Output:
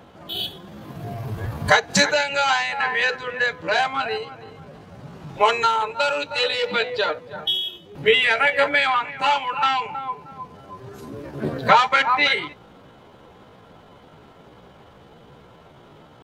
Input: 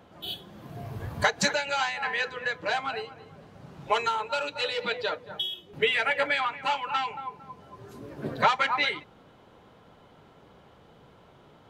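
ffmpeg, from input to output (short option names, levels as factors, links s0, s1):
-af "atempo=0.72,volume=2.37"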